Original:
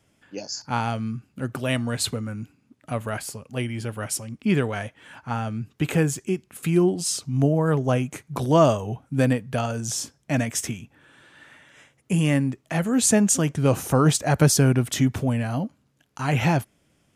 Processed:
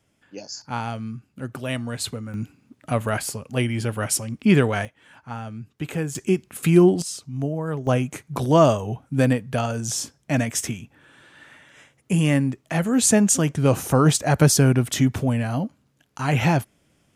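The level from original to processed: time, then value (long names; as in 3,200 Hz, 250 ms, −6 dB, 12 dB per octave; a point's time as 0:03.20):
−3 dB
from 0:02.34 +5 dB
from 0:04.85 −5.5 dB
from 0:06.15 +5 dB
from 0:07.02 −6 dB
from 0:07.87 +1.5 dB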